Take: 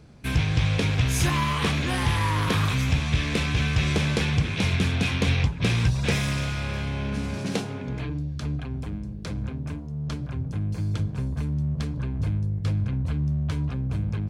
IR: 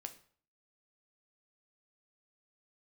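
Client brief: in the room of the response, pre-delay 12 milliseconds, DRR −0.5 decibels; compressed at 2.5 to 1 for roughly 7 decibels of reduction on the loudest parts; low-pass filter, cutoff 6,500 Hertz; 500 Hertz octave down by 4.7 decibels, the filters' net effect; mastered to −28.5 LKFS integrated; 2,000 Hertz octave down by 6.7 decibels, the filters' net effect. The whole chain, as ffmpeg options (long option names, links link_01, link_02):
-filter_complex "[0:a]lowpass=6500,equalizer=frequency=500:width_type=o:gain=-5.5,equalizer=frequency=2000:width_type=o:gain=-8.5,acompressor=threshold=-28dB:ratio=2.5,asplit=2[link_01][link_02];[1:a]atrim=start_sample=2205,adelay=12[link_03];[link_02][link_03]afir=irnorm=-1:irlink=0,volume=4.5dB[link_04];[link_01][link_04]amix=inputs=2:normalize=0"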